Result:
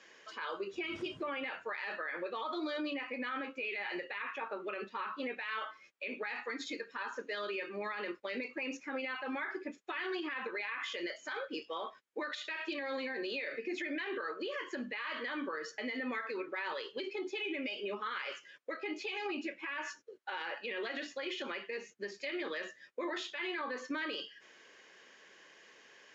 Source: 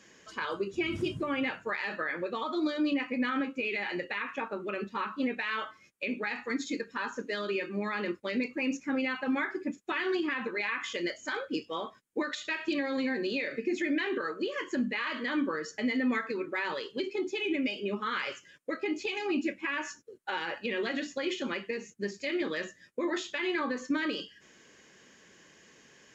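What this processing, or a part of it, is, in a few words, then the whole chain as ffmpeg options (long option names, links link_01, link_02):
DJ mixer with the lows and highs turned down: -filter_complex "[0:a]acrossover=split=380 5700:gain=0.126 1 0.0794[link_01][link_02][link_03];[link_01][link_02][link_03]amix=inputs=3:normalize=0,alimiter=level_in=7dB:limit=-24dB:level=0:latency=1:release=68,volume=-7dB,volume=1dB"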